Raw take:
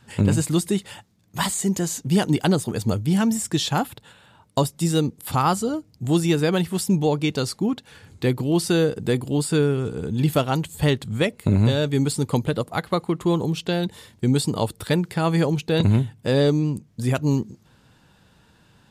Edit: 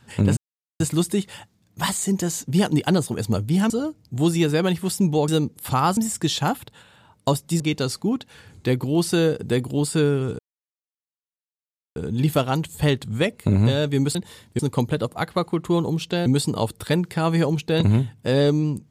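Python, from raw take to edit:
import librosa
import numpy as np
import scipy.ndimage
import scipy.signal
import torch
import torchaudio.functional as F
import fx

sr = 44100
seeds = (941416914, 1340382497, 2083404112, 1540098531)

y = fx.edit(x, sr, fx.insert_silence(at_s=0.37, length_s=0.43),
    fx.swap(start_s=3.27, length_s=1.63, other_s=5.59, other_length_s=1.58),
    fx.insert_silence(at_s=9.96, length_s=1.57),
    fx.move(start_s=13.82, length_s=0.44, to_s=12.15), tone=tone)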